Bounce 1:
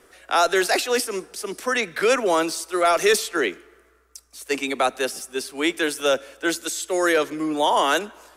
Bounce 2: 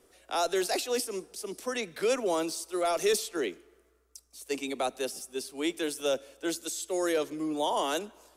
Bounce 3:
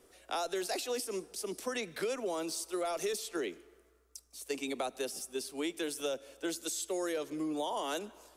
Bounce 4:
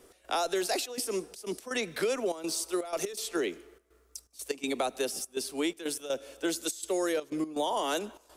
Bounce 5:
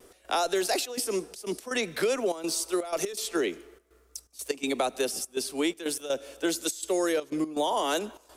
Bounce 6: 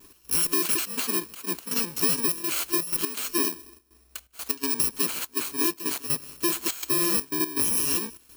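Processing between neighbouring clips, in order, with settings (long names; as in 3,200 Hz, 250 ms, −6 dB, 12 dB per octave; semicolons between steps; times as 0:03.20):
parametric band 1,600 Hz −9.5 dB 1.4 octaves; level −6.5 dB
downward compressor 6 to 1, threshold −32 dBFS, peak gain reduction 10 dB
gate pattern "x.xxxxx.xxx." 123 BPM −12 dB; level +5.5 dB
pitch vibrato 0.53 Hz 14 cents; level +3 dB
samples in bit-reversed order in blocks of 64 samples; level +2.5 dB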